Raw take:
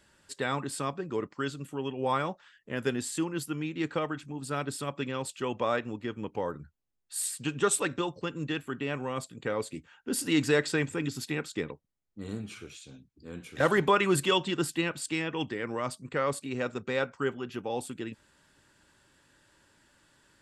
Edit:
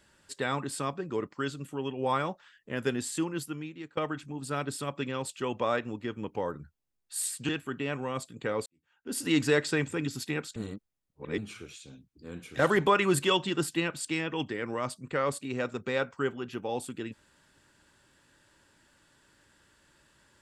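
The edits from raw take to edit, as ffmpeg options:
-filter_complex "[0:a]asplit=6[a][b][c][d][e][f];[a]atrim=end=3.97,asetpts=PTS-STARTPTS,afade=t=out:st=3.31:d=0.66:silence=0.0707946[g];[b]atrim=start=3.97:end=7.492,asetpts=PTS-STARTPTS,afade=t=in:d=0.004:c=hsin:silence=0.0707946[h];[c]atrim=start=8.498:end=9.67,asetpts=PTS-STARTPTS,afade=t=out:st=1.168:d=0.004:c=hsin[i];[d]atrim=start=9.67:end=11.572,asetpts=PTS-STARTPTS,afade=t=in:d=0.59:c=qua[j];[e]atrim=start=11.568:end=12.392,asetpts=PTS-STARTPTS,areverse[k];[f]atrim=start=12.388[l];[g][h]concat=n=2:v=0:a=1[m];[i][j]concat=n=2:v=0:a=1[n];[m][n]acrossfade=d=0.004:c1=hsin:c2=hsin[o];[o][k]acrossfade=d=0.004:c1=hsin:c2=hsin[p];[p][l]acrossfade=d=0.004:c1=hsin:c2=hsin"

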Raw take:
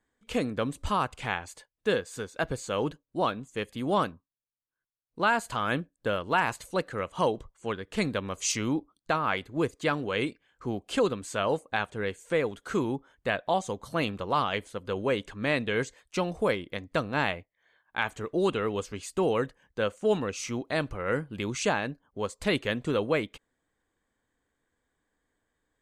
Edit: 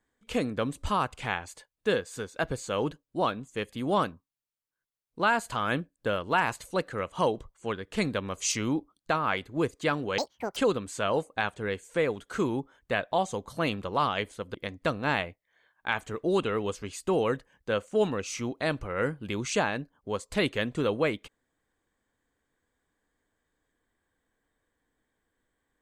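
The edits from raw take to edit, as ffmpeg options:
-filter_complex "[0:a]asplit=4[a][b][c][d];[a]atrim=end=10.184[e];[b]atrim=start=10.18:end=10.92,asetpts=PTS-STARTPTS,asetrate=85113,aresample=44100[f];[c]atrim=start=10.916:end=14.902[g];[d]atrim=start=16.638[h];[e][f]acrossfade=d=0.004:c1=hsin:c2=hsin[i];[i][g]acrossfade=d=0.004:c1=hsin:c2=hsin[j];[j][h]acrossfade=d=0.004:c1=hsin:c2=hsin"

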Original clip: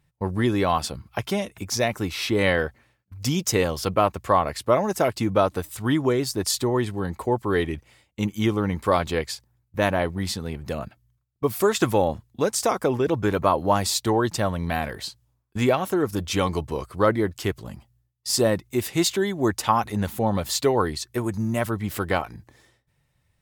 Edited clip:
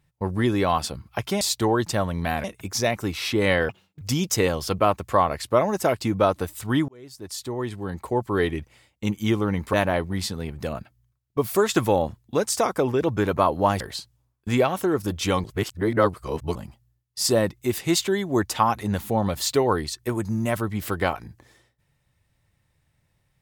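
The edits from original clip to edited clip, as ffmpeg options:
-filter_complex "[0:a]asplit=10[a][b][c][d][e][f][g][h][i][j];[a]atrim=end=1.412[k];[b]atrim=start=13.858:end=14.892[l];[c]atrim=start=1.408:end=2.664[m];[d]atrim=start=2.66:end=3.17,asetpts=PTS-STARTPTS,asetrate=69678,aresample=44100[n];[e]atrim=start=3.166:end=6.04,asetpts=PTS-STARTPTS,afade=t=out:st=2.87:d=0.004:c=hsin[o];[f]atrim=start=6.04:end=8.892,asetpts=PTS-STARTPTS,afade=t=in:d=1.44[p];[g]atrim=start=9.788:end=13.862[q];[h]atrim=start=14.888:end=16.532[r];[i]atrim=start=16.528:end=17.642,asetpts=PTS-STARTPTS,areverse[s];[j]atrim=start=17.638[t];[k][l]acrossfade=d=0.004:c1=hsin:c2=hsin[u];[u][m]acrossfade=d=0.004:c1=hsin:c2=hsin[v];[v][n]acrossfade=d=0.004:c1=hsin:c2=hsin[w];[o][p]concat=n=2:v=0:a=1[x];[w][x]acrossfade=d=0.004:c1=hsin:c2=hsin[y];[y][q]acrossfade=d=0.004:c1=hsin:c2=hsin[z];[z][r]acrossfade=d=0.004:c1=hsin:c2=hsin[aa];[aa][s]acrossfade=d=0.004:c1=hsin:c2=hsin[ab];[ab][t]acrossfade=d=0.004:c1=hsin:c2=hsin"

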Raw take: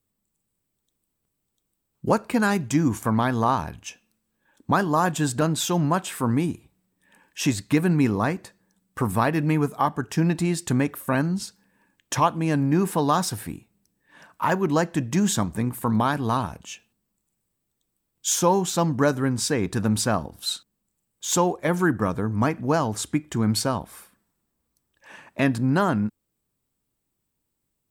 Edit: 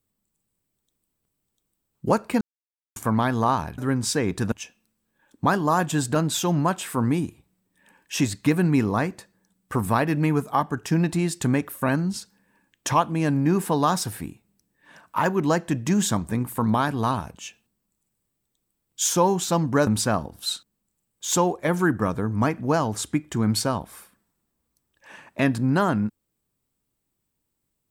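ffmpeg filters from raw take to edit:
-filter_complex "[0:a]asplit=6[a][b][c][d][e][f];[a]atrim=end=2.41,asetpts=PTS-STARTPTS,afade=t=out:st=2.406:d=0.004:c=hsin[g];[b]atrim=start=2.41:end=2.96,asetpts=PTS-STARTPTS,volume=0[h];[c]atrim=start=2.96:end=3.782,asetpts=PTS-STARTPTS,afade=t=in:d=0.004:c=hsin[i];[d]atrim=start=19.128:end=19.872[j];[e]atrim=start=3.778:end=19.132[k];[f]atrim=start=19.868[l];[g][h][i]concat=n=3:v=0:a=1[m];[m][j]acrossfade=d=0.004:c1=hsin:c2=hsin[n];[n][k]acrossfade=d=0.004:c1=hsin:c2=hsin[o];[o][l]acrossfade=d=0.004:c1=hsin:c2=hsin"

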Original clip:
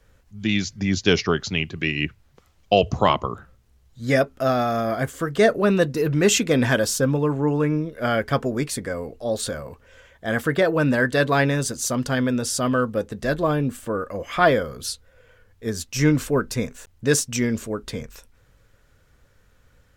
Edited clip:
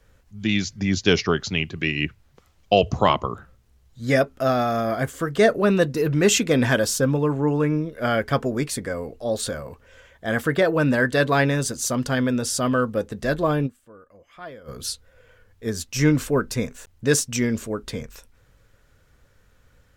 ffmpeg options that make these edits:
-filter_complex "[0:a]asplit=3[a][b][c];[a]atrim=end=13.83,asetpts=PTS-STARTPTS,afade=t=out:st=13.66:d=0.17:c=exp:silence=0.0841395[d];[b]atrim=start=13.83:end=14.52,asetpts=PTS-STARTPTS,volume=-21.5dB[e];[c]atrim=start=14.52,asetpts=PTS-STARTPTS,afade=t=in:d=0.17:c=exp:silence=0.0841395[f];[d][e][f]concat=n=3:v=0:a=1"

